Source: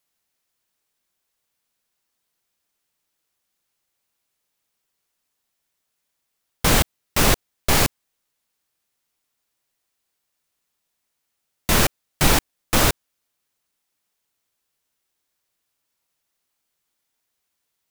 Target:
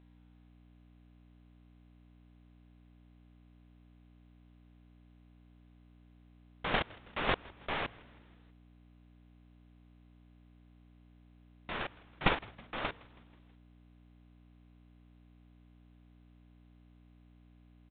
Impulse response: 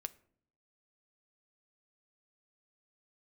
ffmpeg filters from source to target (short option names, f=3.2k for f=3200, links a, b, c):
-filter_complex "[0:a]agate=range=-27dB:threshold=-11dB:ratio=16:detection=peak,dynaudnorm=f=110:g=13:m=15dB,aeval=exprs='val(0)+0.00398*(sin(2*PI*60*n/s)+sin(2*PI*2*60*n/s)/2+sin(2*PI*3*60*n/s)/3+sin(2*PI*4*60*n/s)/4+sin(2*PI*5*60*n/s)/5)':c=same,asplit=2[a][b];[b]highpass=f=720:p=1,volume=13dB,asoftclip=type=tanh:threshold=-1.5dB[c];[a][c]amix=inputs=2:normalize=0,lowpass=f=2.5k:p=1,volume=-6dB,asplit=5[d][e][f][g][h];[e]adelay=161,afreqshift=-120,volume=-22.5dB[i];[f]adelay=322,afreqshift=-240,volume=-27.1dB[j];[g]adelay=483,afreqshift=-360,volume=-31.7dB[k];[h]adelay=644,afreqshift=-480,volume=-36.2dB[l];[d][i][j][k][l]amix=inputs=5:normalize=0,volume=-7.5dB" -ar 8000 -c:a pcm_alaw